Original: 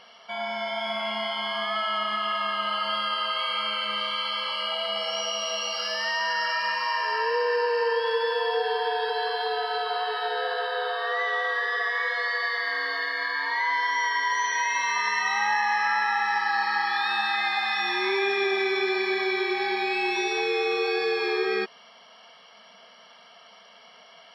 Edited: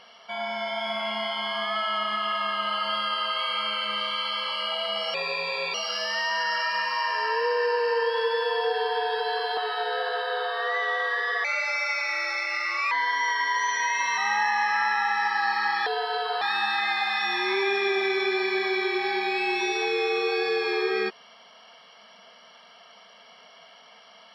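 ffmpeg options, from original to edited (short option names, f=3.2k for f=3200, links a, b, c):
-filter_complex "[0:a]asplit=9[a][b][c][d][e][f][g][h][i];[a]atrim=end=5.144[j];[b]atrim=start=5.14:end=5.64,asetpts=PTS-STARTPTS,asetrate=36603,aresample=44100,atrim=end_sample=26566,asetpts=PTS-STARTPTS[k];[c]atrim=start=5.636:end=9.472[l];[d]atrim=start=10.018:end=11.894[m];[e]atrim=start=11.89:end=13.67,asetpts=PTS-STARTPTS,asetrate=53361,aresample=44100,atrim=end_sample=64874,asetpts=PTS-STARTPTS[n];[f]atrim=start=13.666:end=14.932[o];[g]atrim=start=15.278:end=16.972[p];[h]atrim=start=9.468:end=10.022[q];[i]atrim=start=16.968[r];[j][k]acrossfade=d=0.004:c1=hsin:c2=hsin[s];[s][l]acrossfade=d=0.004:c1=hsin:c2=hsin[t];[t][m]acrossfade=d=0.004:c1=hsin:c2=hsin[u];[u][n]acrossfade=d=0.004:c1=hsin:c2=hsin[v];[v][o]acrossfade=d=0.004:c1=hsin:c2=hsin[w];[w][p]acrossfade=d=0.004:c1=hsin:c2=hsin[x];[x][q]acrossfade=d=0.004:c1=hsin:c2=hsin[y];[y][r]acrossfade=d=0.004:c1=hsin:c2=hsin"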